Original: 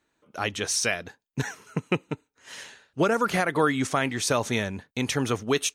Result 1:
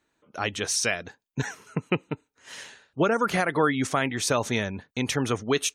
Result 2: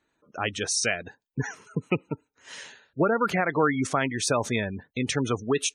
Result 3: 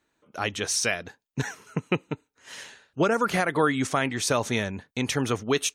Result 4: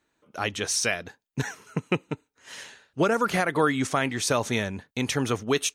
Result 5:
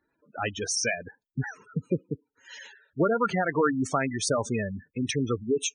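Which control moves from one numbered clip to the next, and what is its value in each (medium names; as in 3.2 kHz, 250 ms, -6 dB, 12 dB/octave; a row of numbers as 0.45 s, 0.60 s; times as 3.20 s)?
spectral gate, under each frame's peak: -35 dB, -20 dB, -45 dB, -60 dB, -10 dB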